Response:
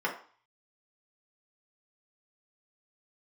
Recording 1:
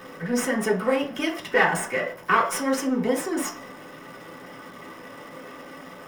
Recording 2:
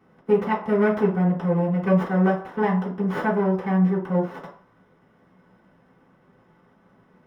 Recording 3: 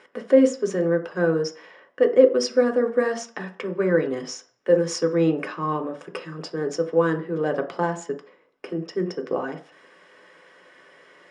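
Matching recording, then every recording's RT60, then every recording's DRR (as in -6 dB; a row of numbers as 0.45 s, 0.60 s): 1; 0.45 s, 0.45 s, 0.45 s; -4.5 dB, -11.0 dB, 3.5 dB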